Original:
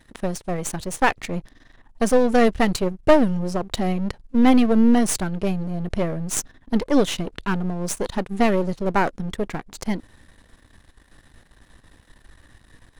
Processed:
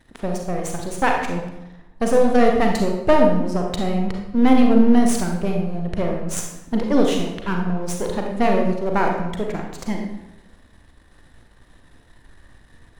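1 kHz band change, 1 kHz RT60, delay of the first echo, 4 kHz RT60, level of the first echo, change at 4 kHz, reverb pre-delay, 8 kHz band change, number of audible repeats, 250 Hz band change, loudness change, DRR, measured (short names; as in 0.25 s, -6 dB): +2.0 dB, 0.95 s, none, 0.70 s, none, -1.0 dB, 34 ms, -2.5 dB, none, +1.5 dB, +1.5 dB, 1.0 dB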